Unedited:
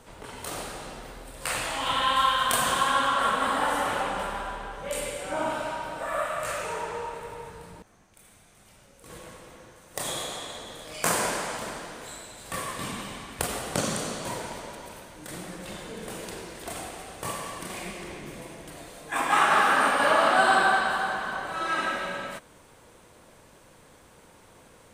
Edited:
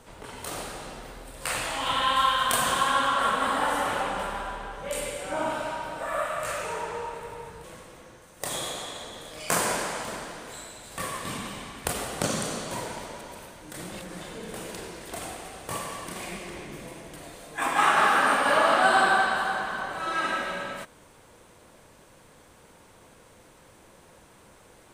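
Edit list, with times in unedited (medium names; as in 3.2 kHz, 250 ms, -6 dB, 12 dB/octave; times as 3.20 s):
7.64–9.18 s: delete
15.46–15.75 s: reverse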